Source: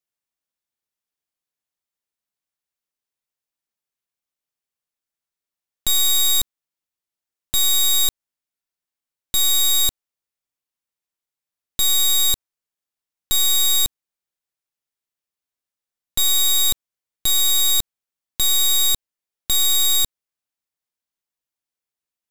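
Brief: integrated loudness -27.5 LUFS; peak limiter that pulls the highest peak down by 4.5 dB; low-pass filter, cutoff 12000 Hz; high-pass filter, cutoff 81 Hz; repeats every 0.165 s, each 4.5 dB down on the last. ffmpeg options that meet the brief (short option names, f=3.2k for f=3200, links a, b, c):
-af "highpass=81,lowpass=12k,alimiter=limit=-14.5dB:level=0:latency=1,aecho=1:1:165|330|495|660|825|990|1155|1320|1485:0.596|0.357|0.214|0.129|0.0772|0.0463|0.0278|0.0167|0.01,volume=-9dB"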